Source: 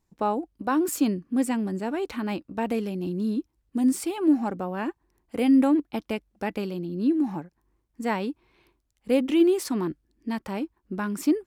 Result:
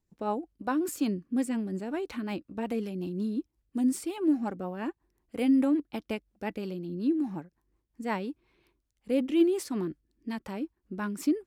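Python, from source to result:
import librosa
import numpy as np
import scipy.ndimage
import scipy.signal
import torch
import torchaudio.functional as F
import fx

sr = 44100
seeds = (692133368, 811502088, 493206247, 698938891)

y = fx.rotary(x, sr, hz=5.5)
y = y * 10.0 ** (-3.0 / 20.0)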